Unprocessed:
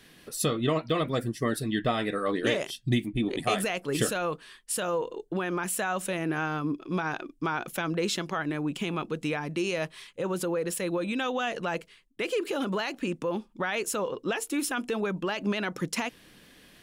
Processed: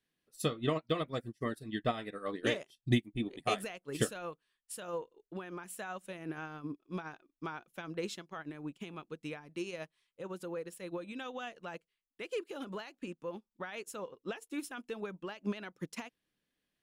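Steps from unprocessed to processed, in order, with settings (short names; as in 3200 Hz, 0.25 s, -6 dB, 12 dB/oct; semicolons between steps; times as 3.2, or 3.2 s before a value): upward expander 2.5:1, over -41 dBFS; gain -1 dB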